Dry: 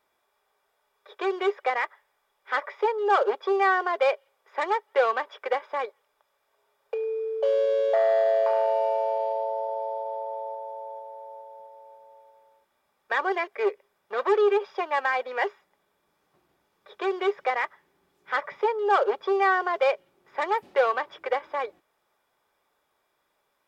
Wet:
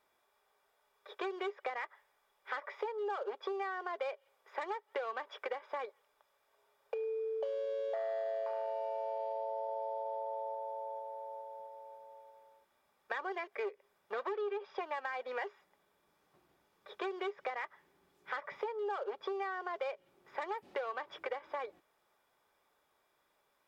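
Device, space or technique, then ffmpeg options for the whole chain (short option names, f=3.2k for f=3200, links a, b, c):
serial compression, peaks first: -filter_complex "[0:a]asettb=1/sr,asplit=3[a][b][c];[a]atrim=end=14.294[d];[b]atrim=start=14.29:end=14.81,asetpts=PTS-STARTPTS,afade=t=in:d=0.004:c=qsin,afade=t=out:st=0.516:d=0.004:c=qsin,lowpass=5.2k[e];[c]atrim=start=14.806[f];[d][e]acrossfade=d=0.004:c1=hsin:c2=qsin[g];[g][f]acrossfade=d=0.004:c1=qsin:c2=hsin,acompressor=threshold=-29dB:ratio=6,acompressor=threshold=-38dB:ratio=1.5,volume=-2.5dB"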